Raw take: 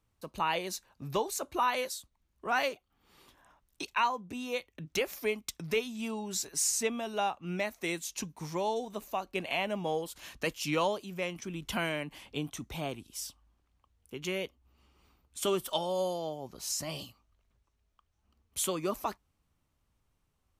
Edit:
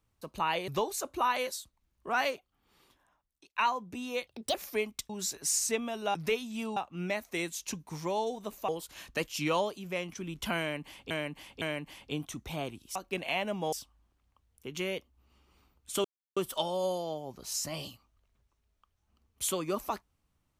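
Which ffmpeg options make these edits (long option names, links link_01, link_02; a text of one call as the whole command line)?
ffmpeg -i in.wav -filter_complex "[0:a]asplit=14[link_01][link_02][link_03][link_04][link_05][link_06][link_07][link_08][link_09][link_10][link_11][link_12][link_13][link_14];[link_01]atrim=end=0.682[link_15];[link_02]atrim=start=1.058:end=3.94,asetpts=PTS-STARTPTS,afade=type=out:start_time=1.602:duration=1.28[link_16];[link_03]atrim=start=3.94:end=4.654,asetpts=PTS-STARTPTS,afade=type=in:duration=0.004:curve=hsin[link_17];[link_04]atrim=start=4.65:end=5.04,asetpts=PTS-STARTPTS,asetrate=62622,aresample=44100[link_18];[link_05]atrim=start=5.036:end=5.592[link_19];[link_06]atrim=start=6.208:end=7.262[link_20];[link_07]atrim=start=5.588:end=6.212[link_21];[link_08]atrim=start=7.258:end=9.182[link_22];[link_09]atrim=start=9.948:end=12.372[link_23];[link_10]atrim=start=11.858:end=12.372[link_24];[link_11]atrim=start=11.858:end=13.202[link_25];[link_12]atrim=start=9.178:end=9.952[link_26];[link_13]atrim=start=13.198:end=15.52,asetpts=PTS-STARTPTS,afade=type=out:start_time=2.318:duration=0.004:curve=hsin,apad=pad_dur=0.32[link_27];[link_14]atrim=start=15.52,asetpts=PTS-STARTPTS,afade=type=in:duration=0.004:curve=hsin[link_28];[link_16][link_17]concat=n=2:v=0:a=1[link_29];[link_15][link_29]acrossfade=duration=0.004:curve1=hsin:curve2=hsin[link_30];[link_30][link_18]acrossfade=duration=0.004:curve1=hsin:curve2=hsin[link_31];[link_31][link_19]acrossfade=duration=0.004:curve1=hsin:curve2=hsin[link_32];[link_32][link_20]acrossfade=duration=0.004:curve1=hsin:curve2=hsin[link_33];[link_33][link_21]acrossfade=duration=0.004:curve1=hsin:curve2=hsin[link_34];[link_34][link_22]acrossfade=duration=0.004:curve1=hsin:curve2=hsin[link_35];[link_35][link_23]acrossfade=duration=0.004:curve1=hsin:curve2=hsin[link_36];[link_36][link_24]acrossfade=duration=0.004:curve1=hsin:curve2=hsin[link_37];[link_37][link_25]acrossfade=duration=0.004:curve1=hsin:curve2=hsin[link_38];[link_38][link_26]acrossfade=duration=0.004:curve1=hsin:curve2=hsin[link_39];[link_27][link_28]concat=n=2:v=0:a=1[link_40];[link_39][link_40]acrossfade=duration=0.004:curve1=hsin:curve2=hsin" out.wav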